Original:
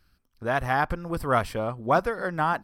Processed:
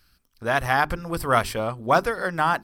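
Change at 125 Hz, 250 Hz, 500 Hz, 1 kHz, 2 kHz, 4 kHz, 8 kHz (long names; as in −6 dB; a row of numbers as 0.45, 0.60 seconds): +1.0, +1.0, +2.0, +3.0, +4.5, +8.0, +9.5 decibels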